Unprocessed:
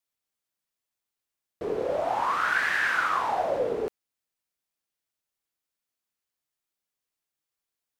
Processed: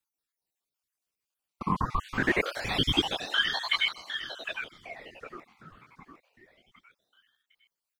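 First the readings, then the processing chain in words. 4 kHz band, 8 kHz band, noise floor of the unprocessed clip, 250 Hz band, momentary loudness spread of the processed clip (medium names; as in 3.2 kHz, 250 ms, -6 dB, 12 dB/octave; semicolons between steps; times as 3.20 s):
+14.0 dB, +0.5 dB, under -85 dBFS, +7.5 dB, 18 LU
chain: random holes in the spectrogram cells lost 65%; feedback delay 758 ms, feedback 41%, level -9 dB; ring modulator with a swept carrier 1.6 kHz, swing 65%, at 0.26 Hz; trim +6 dB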